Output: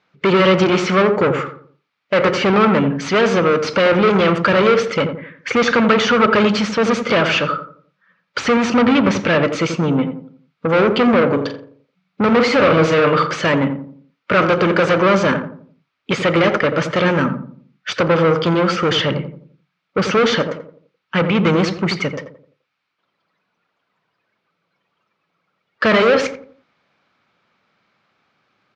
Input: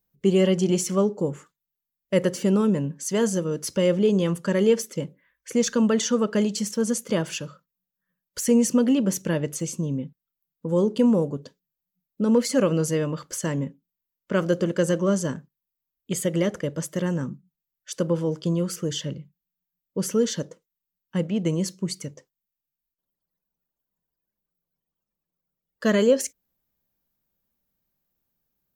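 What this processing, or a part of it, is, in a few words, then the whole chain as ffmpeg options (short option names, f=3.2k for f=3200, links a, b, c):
overdrive pedal into a guitar cabinet: -filter_complex "[0:a]asettb=1/sr,asplit=3[a][b][c];[a]atrim=end=11.294[d];[b]atrim=start=11.29:end=13.27,asetpts=PTS-STARTPTS,afade=t=in:d=0.004:c=qsin,afade=t=out:st=1.976:d=0.004:c=qsin,asplit=2[e][f];[f]adelay=43,volume=-10dB[g];[e][g]amix=inputs=2:normalize=0,atrim=end_sample=87318[h];[c]atrim=start=13.266[i];[d][h]acrossfade=d=0.004:c1=hsin:c2=qsin[j];[j][i]acrossfade=d=0.004:c1=qsin:c2=hsin,asplit=2[k][l];[l]highpass=f=720:p=1,volume=30dB,asoftclip=type=tanh:threshold=-8dB[m];[k][m]amix=inputs=2:normalize=0,lowpass=f=4.2k:p=1,volume=-6dB,highpass=84,equalizer=f=110:t=q:w=4:g=8,equalizer=f=1.3k:t=q:w=4:g=9,equalizer=f=2.3k:t=q:w=4:g=7,lowpass=f=4.5k:w=0.5412,lowpass=f=4.5k:w=1.3066,asplit=2[n][o];[o]adelay=86,lowpass=f=830:p=1,volume=-6dB,asplit=2[p][q];[q]adelay=86,lowpass=f=830:p=1,volume=0.43,asplit=2[r][s];[s]adelay=86,lowpass=f=830:p=1,volume=0.43,asplit=2[t][u];[u]adelay=86,lowpass=f=830:p=1,volume=0.43,asplit=2[v][w];[w]adelay=86,lowpass=f=830:p=1,volume=0.43[x];[n][p][r][t][v][x]amix=inputs=6:normalize=0"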